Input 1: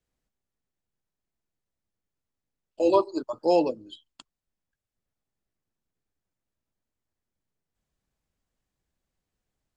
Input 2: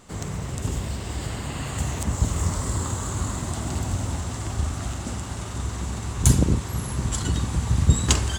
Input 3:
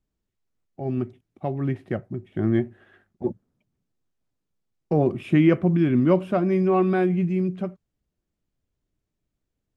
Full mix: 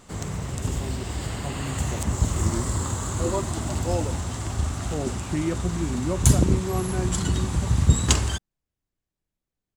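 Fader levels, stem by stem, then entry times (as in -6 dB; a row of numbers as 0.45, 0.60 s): -7.5, 0.0, -9.5 dB; 0.40, 0.00, 0.00 s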